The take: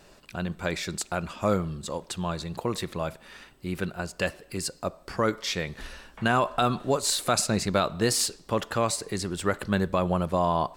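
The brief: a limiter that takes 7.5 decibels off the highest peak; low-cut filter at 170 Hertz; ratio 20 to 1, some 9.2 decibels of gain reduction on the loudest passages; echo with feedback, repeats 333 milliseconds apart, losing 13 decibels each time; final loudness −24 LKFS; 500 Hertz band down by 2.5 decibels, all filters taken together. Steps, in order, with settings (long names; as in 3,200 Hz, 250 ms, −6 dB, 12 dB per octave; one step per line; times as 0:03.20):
high-pass filter 170 Hz
parametric band 500 Hz −3 dB
downward compressor 20 to 1, threshold −29 dBFS
brickwall limiter −23 dBFS
repeating echo 333 ms, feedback 22%, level −13 dB
level +12.5 dB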